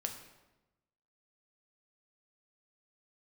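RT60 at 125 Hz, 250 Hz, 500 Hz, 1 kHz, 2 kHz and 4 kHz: 1.3, 1.2, 1.1, 1.0, 0.90, 0.75 seconds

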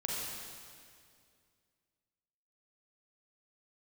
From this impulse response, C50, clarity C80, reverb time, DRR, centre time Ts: −2.0 dB, −0.5 dB, 2.2 s, −4.0 dB, 135 ms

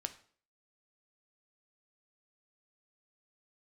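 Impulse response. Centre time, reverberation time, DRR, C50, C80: 6 ms, 0.50 s, 8.0 dB, 14.5 dB, 18.5 dB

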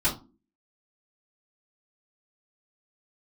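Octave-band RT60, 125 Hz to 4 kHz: 0.35, 0.55, 0.40, 0.30, 0.20, 0.20 seconds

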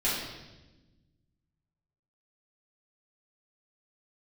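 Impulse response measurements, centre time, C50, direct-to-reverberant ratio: 70 ms, 0.5 dB, −11.0 dB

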